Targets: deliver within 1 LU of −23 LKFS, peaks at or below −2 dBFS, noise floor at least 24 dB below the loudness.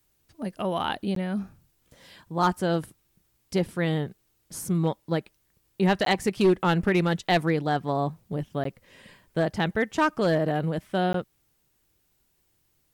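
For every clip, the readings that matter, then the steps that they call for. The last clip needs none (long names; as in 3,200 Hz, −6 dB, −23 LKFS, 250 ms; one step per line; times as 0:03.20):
share of clipped samples 0.4%; peaks flattened at −14.0 dBFS; number of dropouts 4; longest dropout 13 ms; integrated loudness −26.5 LKFS; sample peak −14.0 dBFS; target loudness −23.0 LKFS
→ clipped peaks rebuilt −14 dBFS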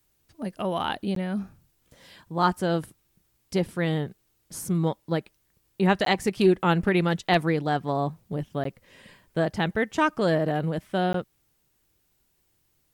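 share of clipped samples 0.0%; number of dropouts 4; longest dropout 13 ms
→ repair the gap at 0:01.15/0:06.05/0:08.64/0:11.13, 13 ms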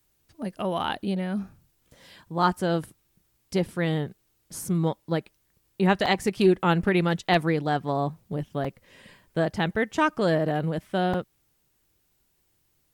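number of dropouts 0; integrated loudness −26.5 LKFS; sample peak −6.5 dBFS; target loudness −23.0 LKFS
→ level +3.5 dB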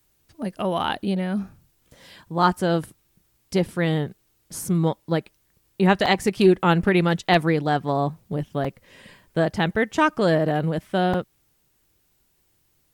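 integrated loudness −23.0 LKFS; sample peak −3.0 dBFS; background noise floor −67 dBFS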